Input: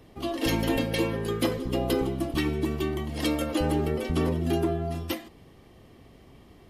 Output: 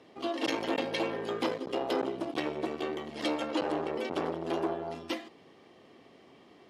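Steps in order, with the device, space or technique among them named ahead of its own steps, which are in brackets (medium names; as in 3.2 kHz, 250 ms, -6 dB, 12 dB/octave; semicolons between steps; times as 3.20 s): public-address speaker with an overloaded transformer (transformer saturation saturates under 520 Hz; band-pass 280–5800 Hz); 3.34–3.93 s: low-pass 9.8 kHz 12 dB/octave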